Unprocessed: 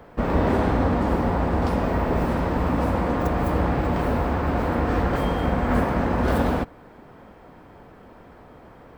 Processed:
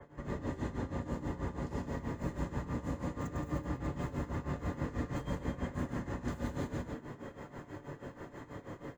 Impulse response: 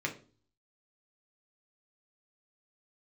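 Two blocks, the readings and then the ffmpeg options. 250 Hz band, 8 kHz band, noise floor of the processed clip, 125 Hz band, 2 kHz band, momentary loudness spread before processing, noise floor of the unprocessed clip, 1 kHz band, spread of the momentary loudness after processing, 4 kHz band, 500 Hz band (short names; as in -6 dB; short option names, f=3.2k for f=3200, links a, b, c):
-14.5 dB, n/a, -55 dBFS, -13.0 dB, -16.0 dB, 2 LU, -48 dBFS, -19.5 dB, 10 LU, -15.5 dB, -17.5 dB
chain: -filter_complex "[0:a]aecho=1:1:100|170|295:0.501|0.473|0.2,areverse,acompressor=threshold=-32dB:ratio=5,areverse,bandreject=f=2.3k:w=5.1,acrossover=split=220|3000[a][b][c];[b]acompressor=threshold=-38dB:ratio=6[d];[a][d][c]amix=inputs=3:normalize=0,equalizer=f=6.9k:w=4.2:g=12.5[e];[1:a]atrim=start_sample=2205[f];[e][f]afir=irnorm=-1:irlink=0,tremolo=f=6.2:d=0.8,adynamicequalizer=threshold=0.001:dfrequency=2800:dqfactor=0.7:tfrequency=2800:tqfactor=0.7:attack=5:release=100:ratio=0.375:range=2:mode=boostabove:tftype=highshelf,volume=-3dB"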